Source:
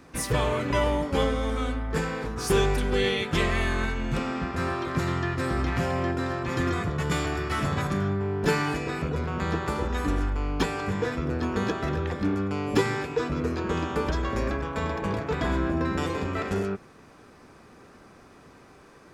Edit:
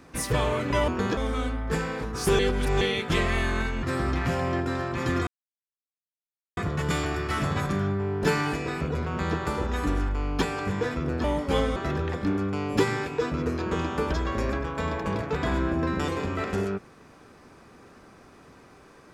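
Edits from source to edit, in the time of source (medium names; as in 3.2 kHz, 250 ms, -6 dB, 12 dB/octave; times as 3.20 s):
0.88–1.40 s: swap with 11.45–11.74 s
2.62–3.04 s: reverse
4.06–5.34 s: delete
6.78 s: insert silence 1.30 s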